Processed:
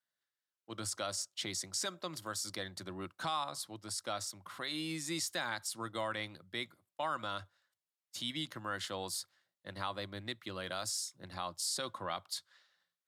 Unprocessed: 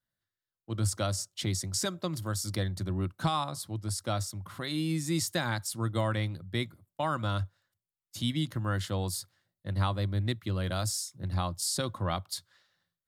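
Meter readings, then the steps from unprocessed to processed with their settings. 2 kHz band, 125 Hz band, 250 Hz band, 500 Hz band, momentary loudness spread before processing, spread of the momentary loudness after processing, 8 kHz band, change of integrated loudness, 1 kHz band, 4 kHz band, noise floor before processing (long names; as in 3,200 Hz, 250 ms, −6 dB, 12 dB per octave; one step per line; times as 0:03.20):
−2.5 dB, −19.5 dB, −11.0 dB, −6.5 dB, 7 LU, 7 LU, −4.0 dB, −6.5 dB, −4.5 dB, −2.5 dB, below −85 dBFS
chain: meter weighting curve A
in parallel at +3 dB: brickwall limiter −27.5 dBFS, peak gain reduction 11 dB
on the sum: level −9 dB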